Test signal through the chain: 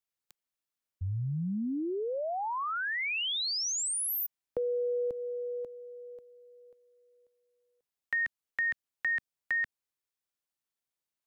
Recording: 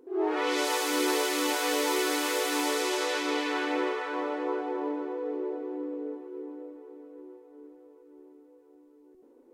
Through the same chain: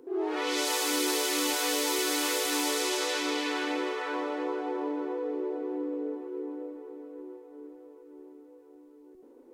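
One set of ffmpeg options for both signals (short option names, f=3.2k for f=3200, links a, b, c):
-filter_complex "[0:a]acrossover=split=210|3000[a][b][c];[b]acompressor=threshold=-34dB:ratio=4[d];[a][d][c]amix=inputs=3:normalize=0,volume=3.5dB"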